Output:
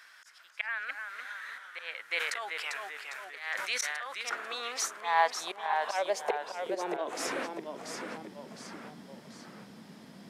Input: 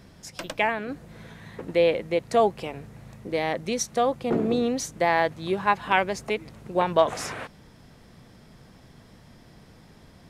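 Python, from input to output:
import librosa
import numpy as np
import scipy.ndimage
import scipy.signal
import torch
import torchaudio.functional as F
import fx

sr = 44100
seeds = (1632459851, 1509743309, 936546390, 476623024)

y = fx.low_shelf(x, sr, hz=430.0, db=-6.0)
y = fx.auto_swell(y, sr, attack_ms=345.0)
y = fx.filter_sweep_highpass(y, sr, from_hz=1500.0, to_hz=210.0, start_s=4.37, end_s=7.85, q=3.2)
y = fx.echo_pitch(y, sr, ms=258, semitones=-1, count=3, db_per_echo=-6.0)
y = fx.sustainer(y, sr, db_per_s=31.0, at=(2.15, 4.18), fade=0.02)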